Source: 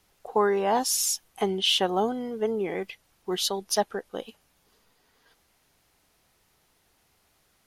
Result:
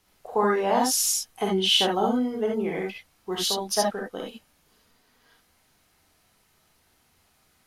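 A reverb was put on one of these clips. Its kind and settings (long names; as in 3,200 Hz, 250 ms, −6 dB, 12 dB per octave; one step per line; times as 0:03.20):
reverb whose tail is shaped and stops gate 90 ms rising, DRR −1.5 dB
level −1.5 dB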